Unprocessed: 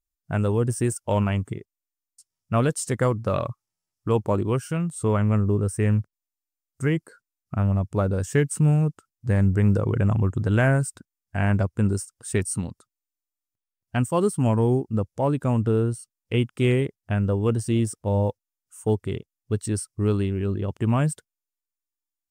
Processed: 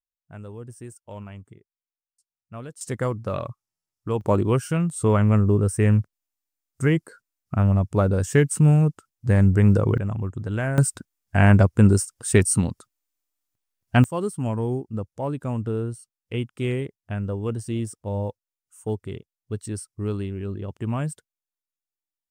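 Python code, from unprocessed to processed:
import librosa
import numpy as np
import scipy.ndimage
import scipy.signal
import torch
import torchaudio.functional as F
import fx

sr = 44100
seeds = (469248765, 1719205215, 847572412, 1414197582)

y = fx.gain(x, sr, db=fx.steps((0.0, -16.0), (2.81, -3.5), (4.21, 3.0), (9.98, -6.0), (10.78, 7.0), (14.04, -5.0)))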